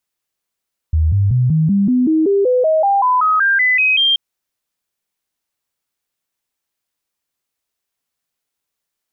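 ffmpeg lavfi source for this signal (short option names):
-f lavfi -i "aevalsrc='0.299*clip(min(mod(t,0.19),0.19-mod(t,0.19))/0.005,0,1)*sin(2*PI*79*pow(2,floor(t/0.19)/3)*mod(t,0.19))':d=3.23:s=44100"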